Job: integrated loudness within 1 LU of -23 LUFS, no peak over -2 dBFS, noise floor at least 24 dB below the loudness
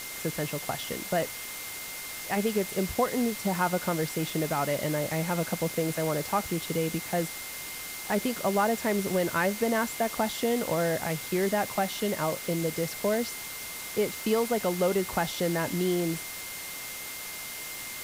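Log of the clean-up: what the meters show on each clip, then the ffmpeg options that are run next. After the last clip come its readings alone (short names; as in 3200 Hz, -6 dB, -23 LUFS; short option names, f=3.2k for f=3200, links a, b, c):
steady tone 2100 Hz; tone level -43 dBFS; noise floor -39 dBFS; noise floor target -54 dBFS; loudness -29.5 LUFS; peak -13.5 dBFS; loudness target -23.0 LUFS
-> -af "bandreject=f=2.1k:w=30"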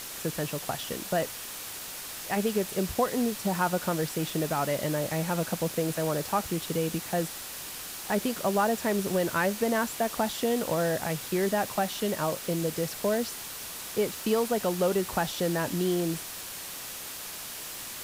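steady tone none; noise floor -40 dBFS; noise floor target -54 dBFS
-> -af "afftdn=nr=14:nf=-40"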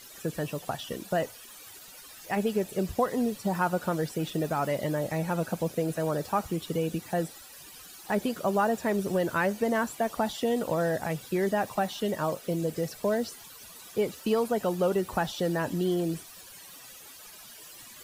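noise floor -48 dBFS; noise floor target -54 dBFS
-> -af "afftdn=nr=6:nf=-48"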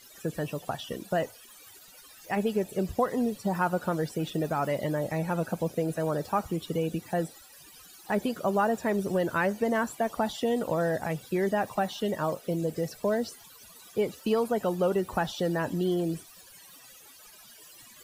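noise floor -52 dBFS; noise floor target -54 dBFS
-> -af "afftdn=nr=6:nf=-52"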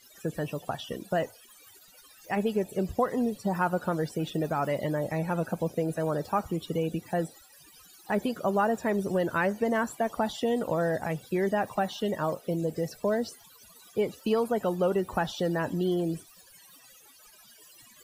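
noise floor -56 dBFS; loudness -29.5 LUFS; peak -14.0 dBFS; loudness target -23.0 LUFS
-> -af "volume=6.5dB"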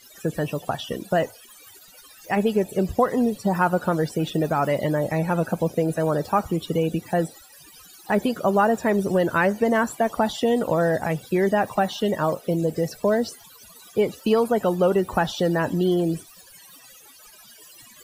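loudness -23.0 LUFS; peak -7.5 dBFS; noise floor -49 dBFS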